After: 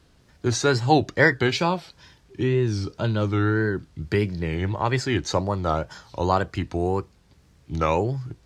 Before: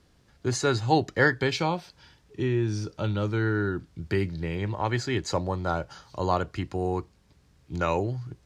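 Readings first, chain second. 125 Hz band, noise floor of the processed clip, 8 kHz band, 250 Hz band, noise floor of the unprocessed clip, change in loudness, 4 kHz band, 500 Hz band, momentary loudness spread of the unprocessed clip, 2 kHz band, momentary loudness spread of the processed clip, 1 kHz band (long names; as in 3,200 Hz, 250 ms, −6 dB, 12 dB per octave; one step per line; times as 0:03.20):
+4.0 dB, −58 dBFS, +4.0 dB, +4.0 dB, −62 dBFS, +4.0 dB, +4.0 dB, +4.0 dB, 9 LU, +4.0 dB, 9 LU, +4.0 dB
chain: tape wow and flutter 130 cents
level +4 dB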